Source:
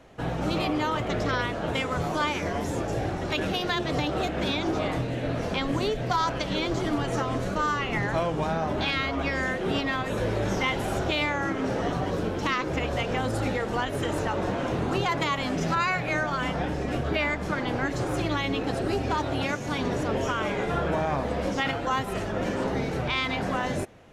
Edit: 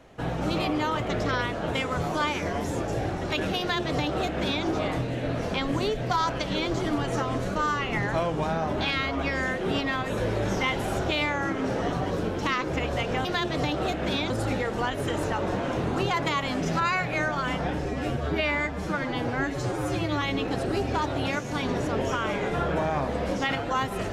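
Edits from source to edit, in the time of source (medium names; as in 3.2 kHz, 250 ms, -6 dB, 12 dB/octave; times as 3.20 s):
3.60–4.65 s: copy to 13.25 s
16.80–18.38 s: stretch 1.5×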